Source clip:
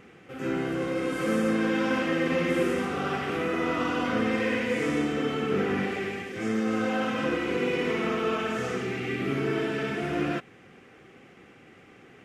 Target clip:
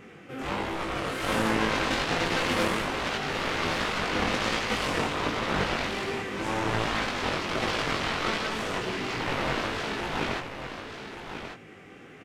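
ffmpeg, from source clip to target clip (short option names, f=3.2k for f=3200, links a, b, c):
-af "aeval=exprs='0.188*(cos(1*acos(clip(val(0)/0.188,-1,1)))-cos(1*PI/2))+0.0841*(cos(7*acos(clip(val(0)/0.188,-1,1)))-cos(7*PI/2))':c=same,flanger=delay=17.5:depth=4.4:speed=1.3,aecho=1:1:1140:0.355"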